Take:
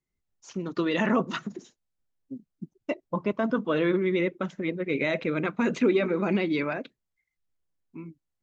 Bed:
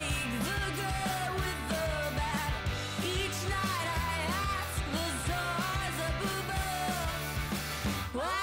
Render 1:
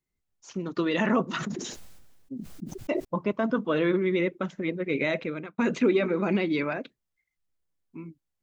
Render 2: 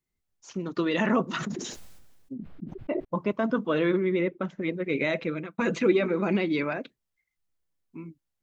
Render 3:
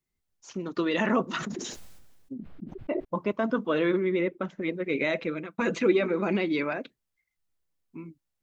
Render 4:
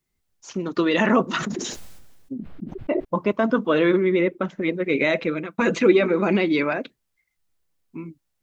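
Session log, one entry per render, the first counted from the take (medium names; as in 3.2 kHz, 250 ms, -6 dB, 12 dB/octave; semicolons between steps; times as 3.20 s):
1.33–3.05 s: decay stretcher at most 34 dB/s; 5.11–5.58 s: fade out
2.33–3.12 s: distance through air 500 m; 4.01–4.61 s: treble shelf 3.8 kHz -11.5 dB; 5.21–5.92 s: comb 6 ms, depth 52%
dynamic bell 140 Hz, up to -5 dB, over -44 dBFS, Q 1.5
trim +6.5 dB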